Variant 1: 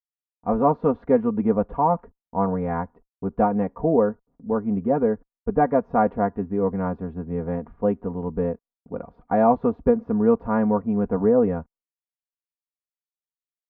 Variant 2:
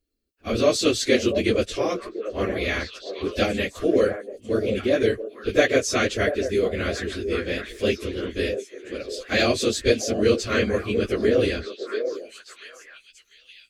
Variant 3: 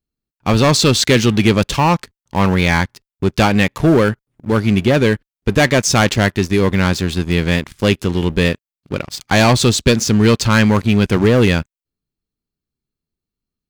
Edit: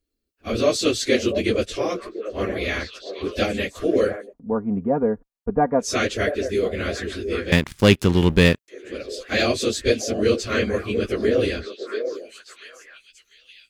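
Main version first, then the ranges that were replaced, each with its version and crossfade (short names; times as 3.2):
2
4.29–5.84 from 1, crossfade 0.10 s
7.52–8.68 from 3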